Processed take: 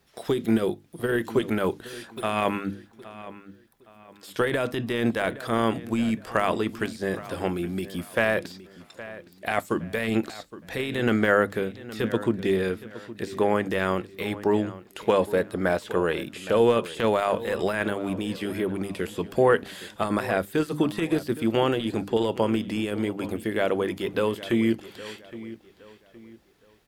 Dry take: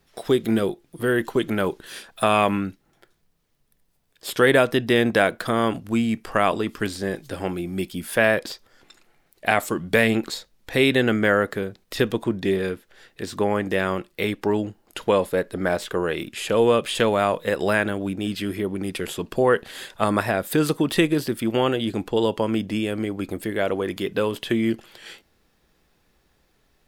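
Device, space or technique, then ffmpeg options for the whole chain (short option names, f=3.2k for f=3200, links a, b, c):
de-esser from a sidechain: -filter_complex "[0:a]highpass=41,bandreject=f=50:t=h:w=6,bandreject=f=100:t=h:w=6,bandreject=f=150:t=h:w=6,bandreject=f=200:t=h:w=6,bandreject=f=250:t=h:w=6,bandreject=f=300:t=h:w=6,asplit=2[a][b];[b]highpass=f=4.7k:w=0.5412,highpass=f=4.7k:w=1.3066,apad=whole_len=1185361[c];[a][c]sidechaincompress=threshold=-44dB:ratio=10:attack=1.6:release=26,asplit=2[d][e];[e]adelay=816,lowpass=f=4.6k:p=1,volume=-16dB,asplit=2[f][g];[g]adelay=816,lowpass=f=4.6k:p=1,volume=0.34,asplit=2[h][i];[i]adelay=816,lowpass=f=4.6k:p=1,volume=0.34[j];[d][f][h][j]amix=inputs=4:normalize=0"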